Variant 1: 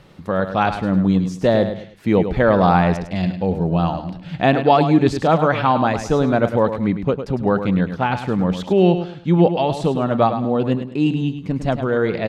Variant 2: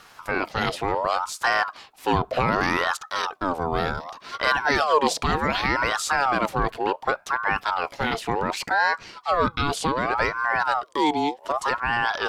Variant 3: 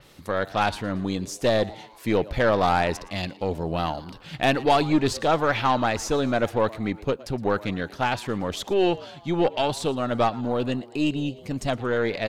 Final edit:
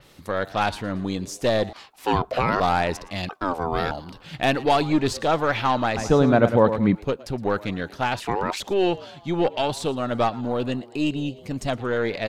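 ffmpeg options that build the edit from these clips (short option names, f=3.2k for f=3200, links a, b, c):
-filter_complex "[1:a]asplit=3[a][b][c];[2:a]asplit=5[d][e][f][g][h];[d]atrim=end=1.732[i];[a]atrim=start=1.728:end=2.602[j];[e]atrim=start=2.598:end=3.292[k];[b]atrim=start=3.288:end=3.912[l];[f]atrim=start=3.908:end=5.972[m];[0:a]atrim=start=5.968:end=6.952[n];[g]atrim=start=6.948:end=8.202[o];[c]atrim=start=8.198:end=8.602[p];[h]atrim=start=8.598[q];[i][j]acrossfade=d=0.004:c1=hsin:c2=hsin[r];[r][k]acrossfade=d=0.004:c1=hsin:c2=hsin[s];[s][l]acrossfade=d=0.004:c1=hsin:c2=hsin[t];[t][m]acrossfade=d=0.004:c1=hsin:c2=hsin[u];[u][n]acrossfade=d=0.004:c1=hsin:c2=hsin[v];[v][o]acrossfade=d=0.004:c1=hsin:c2=hsin[w];[w][p]acrossfade=d=0.004:c1=hsin:c2=hsin[x];[x][q]acrossfade=d=0.004:c1=hsin:c2=hsin"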